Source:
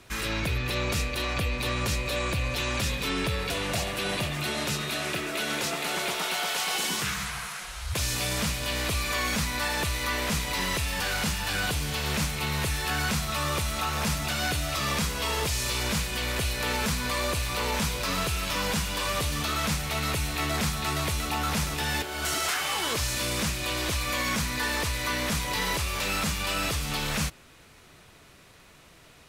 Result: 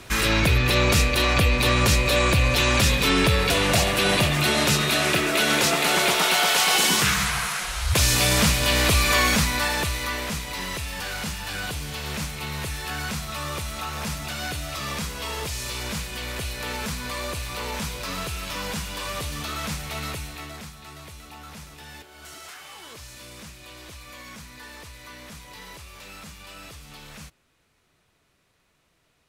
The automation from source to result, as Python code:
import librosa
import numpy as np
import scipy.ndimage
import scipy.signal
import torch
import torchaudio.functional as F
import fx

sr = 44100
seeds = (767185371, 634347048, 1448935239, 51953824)

y = fx.gain(x, sr, db=fx.line((9.17, 9.0), (10.42, -2.5), (20.05, -2.5), (20.74, -14.0)))